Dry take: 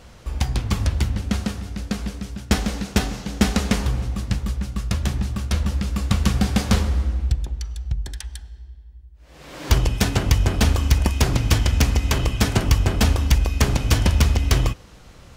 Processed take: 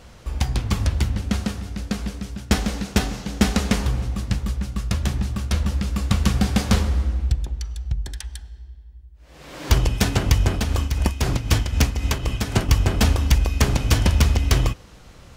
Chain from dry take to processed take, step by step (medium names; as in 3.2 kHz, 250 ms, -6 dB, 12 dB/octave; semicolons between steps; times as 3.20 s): 10.53–12.69 s: tremolo 3.9 Hz, depth 60%